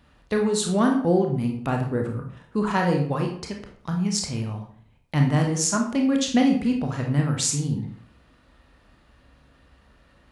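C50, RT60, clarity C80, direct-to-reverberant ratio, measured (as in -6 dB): 6.5 dB, 0.55 s, 10.0 dB, 2.0 dB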